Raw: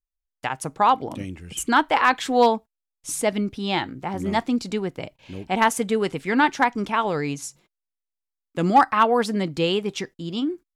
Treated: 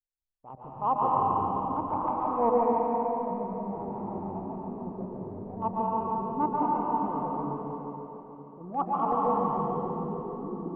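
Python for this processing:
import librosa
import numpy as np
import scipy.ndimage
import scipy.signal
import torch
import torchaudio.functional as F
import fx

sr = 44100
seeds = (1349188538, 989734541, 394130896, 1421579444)

p1 = scipy.signal.sosfilt(scipy.signal.butter(16, 1200.0, 'lowpass', fs=sr, output='sos'), x)
p2 = fx.level_steps(p1, sr, step_db=18)
p3 = fx.transient(p2, sr, attack_db=-10, sustain_db=4)
p4 = p3 + fx.echo_feedback(p3, sr, ms=141, feedback_pct=57, wet_db=-7.0, dry=0)
p5 = fx.rev_plate(p4, sr, seeds[0], rt60_s=3.7, hf_ratio=1.0, predelay_ms=110, drr_db=-5.0)
y = p5 * 10.0 ** (-4.0 / 20.0)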